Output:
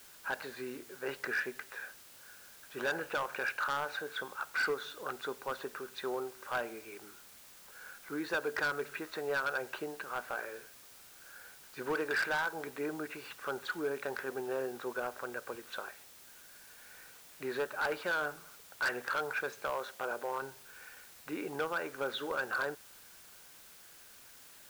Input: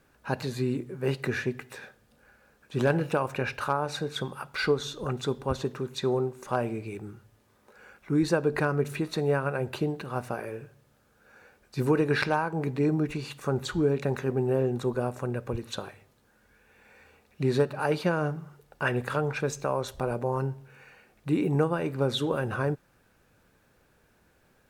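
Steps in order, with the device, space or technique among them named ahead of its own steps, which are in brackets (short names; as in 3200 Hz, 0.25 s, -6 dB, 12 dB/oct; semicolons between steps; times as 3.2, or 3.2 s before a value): drive-through speaker (BPF 490–3300 Hz; bell 1500 Hz +9.5 dB 0.52 oct; hard clip -23 dBFS, distortion -10 dB; white noise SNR 17 dB); 19.7–20.42 HPF 130 Hz 6 dB/oct; gain -5 dB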